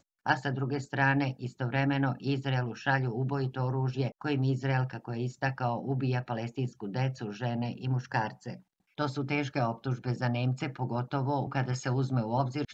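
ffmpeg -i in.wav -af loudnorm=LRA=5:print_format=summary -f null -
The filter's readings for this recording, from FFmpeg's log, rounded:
Input Integrated:    -31.5 LUFS
Input True Peak:     -10.5 dBTP
Input LRA:             3.1 LU
Input Threshold:     -41.6 LUFS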